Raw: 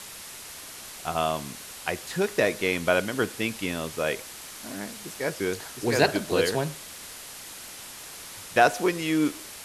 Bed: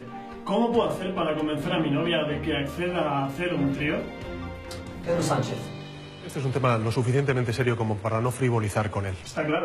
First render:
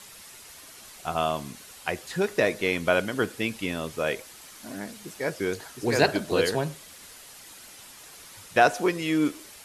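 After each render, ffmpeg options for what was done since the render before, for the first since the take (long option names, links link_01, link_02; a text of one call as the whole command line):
ffmpeg -i in.wav -af "afftdn=noise_reduction=7:noise_floor=-42" out.wav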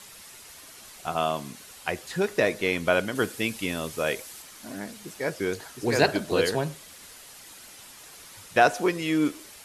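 ffmpeg -i in.wav -filter_complex "[0:a]asettb=1/sr,asplit=3[link_01][link_02][link_03];[link_01]atrim=end=1.074[link_04];[link_02]atrim=start=1.07:end=1.59,asetpts=PTS-STARTPTS,afade=type=in:duration=0.004:curve=qsin,afade=type=out:start_time=0.516:duration=0.004:curve=qsin,highpass=110[link_05];[link_03]atrim=start=1.586[link_06];[link_04][link_05]acrossfade=duration=0.004:curve1=hsin:curve2=qsin[link_07];[link_07][link_06]acrossfade=duration=0.004:curve1=qsin:curve2=hsin,asettb=1/sr,asplit=3[link_08][link_09][link_10];[link_08]atrim=end=3.154[link_11];[link_09]atrim=start=3.15:end=4.42,asetpts=PTS-STARTPTS,afade=type=in:duration=0.004:curve=qsin,afade=type=out:start_time=1.266:duration=0.004:curve=qsin,highshelf=frequency=5100:gain=6.5[link_12];[link_10]atrim=start=4.416[link_13];[link_11][link_12]acrossfade=duration=0.004:curve1=hsin:curve2=qsin[link_14];[link_14][link_13]acrossfade=duration=0.004:curve1=qsin:curve2=hsin" out.wav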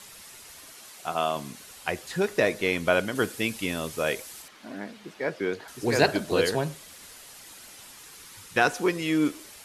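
ffmpeg -i in.wav -filter_complex "[0:a]asettb=1/sr,asplit=3[link_01][link_02][link_03];[link_01]atrim=end=0.734[link_04];[link_02]atrim=start=0.73:end=1.36,asetpts=PTS-STARTPTS,afade=type=in:duration=0.004:curve=qsin,afade=type=out:start_time=0.626:duration=0.004:curve=qsin,highpass=frequency=230:poles=1[link_05];[link_03]atrim=start=1.356[link_06];[link_04][link_05]acrossfade=duration=0.004:curve1=hsin:curve2=qsin[link_07];[link_07][link_06]acrossfade=duration=0.004:curve1=qsin:curve2=hsin,asettb=1/sr,asplit=3[link_08][link_09][link_10];[link_08]atrim=end=4.484[link_11];[link_09]atrim=start=4.48:end=5.68,asetpts=PTS-STARTPTS,afade=type=in:duration=0.004:curve=qsin,afade=type=out:start_time=1.196:duration=0.004:curve=qsin,acrossover=split=150 4300:gain=0.251 1 0.158[link_12][link_13][link_14];[link_12][link_13][link_14]amix=inputs=3:normalize=0[link_15];[link_10]atrim=start=5.676[link_16];[link_11][link_15]acrossfade=duration=0.004:curve1=hsin:curve2=qsin[link_17];[link_17][link_16]acrossfade=duration=0.004:curve1=qsin:curve2=hsin,asettb=1/sr,asplit=3[link_18][link_19][link_20];[link_18]atrim=end=7.994[link_21];[link_19]atrim=start=7.99:end=8.87,asetpts=PTS-STARTPTS,afade=type=in:duration=0.004:curve=qsin,afade=type=out:start_time=0.876:duration=0.004:curve=qsin,equalizer=frequency=640:width_type=o:width=0.28:gain=-13.5[link_22];[link_20]atrim=start=8.866[link_23];[link_21][link_22]acrossfade=duration=0.004:curve1=hsin:curve2=qsin[link_24];[link_24][link_23]acrossfade=duration=0.004:curve1=qsin:curve2=hsin" out.wav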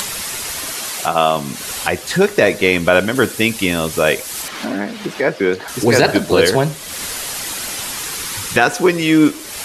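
ffmpeg -i in.wav -af "acompressor=mode=upward:threshold=-27dB:ratio=2.5,alimiter=level_in=12.5dB:limit=-1dB:release=50:level=0:latency=1" out.wav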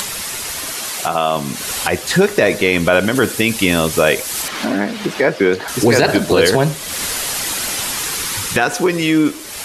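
ffmpeg -i in.wav -af "alimiter=limit=-6dB:level=0:latency=1:release=56,dynaudnorm=framelen=260:gausssize=11:maxgain=6dB" out.wav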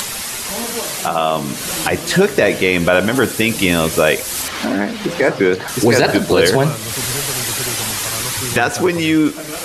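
ffmpeg -i in.wav -i bed.wav -filter_complex "[1:a]volume=-4.5dB[link_01];[0:a][link_01]amix=inputs=2:normalize=0" out.wav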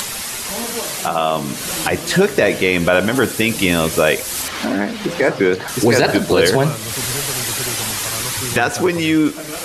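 ffmpeg -i in.wav -af "volume=-1dB" out.wav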